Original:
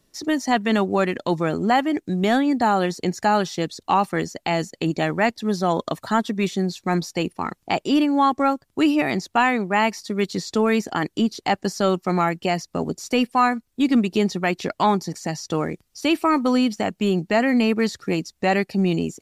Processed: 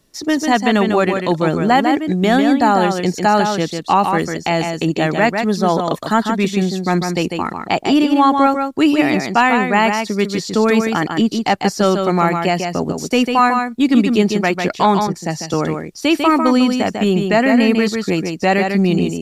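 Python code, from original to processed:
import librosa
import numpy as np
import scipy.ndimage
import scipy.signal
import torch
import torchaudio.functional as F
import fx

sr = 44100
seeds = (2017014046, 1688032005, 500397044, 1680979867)

y = x + 10.0 ** (-5.5 / 20.0) * np.pad(x, (int(148 * sr / 1000.0), 0))[:len(x)]
y = fx.band_widen(y, sr, depth_pct=100, at=(15.07, 15.54))
y = y * librosa.db_to_amplitude(5.0)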